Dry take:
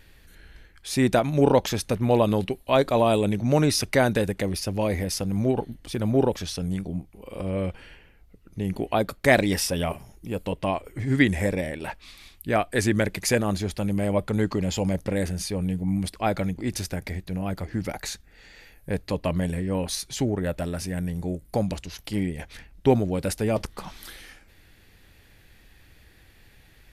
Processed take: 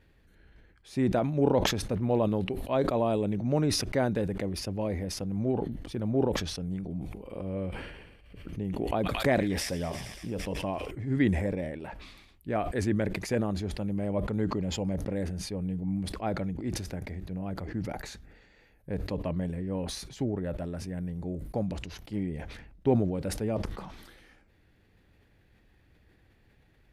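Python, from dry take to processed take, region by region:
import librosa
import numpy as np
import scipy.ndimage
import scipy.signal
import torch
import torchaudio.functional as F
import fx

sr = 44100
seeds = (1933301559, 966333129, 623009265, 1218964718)

y = fx.chain(x, sr, fx.echo_wet_highpass(ms=112, feedback_pct=74, hz=2700.0, wet_db=-7.5),
    fx.pre_swell(db_per_s=51.0), at=(6.79, 10.91))
y = fx.highpass(y, sr, hz=280.0, slope=6)
y = fx.tilt_eq(y, sr, slope=-3.5)
y = fx.sustainer(y, sr, db_per_s=46.0)
y = y * librosa.db_to_amplitude(-9.0)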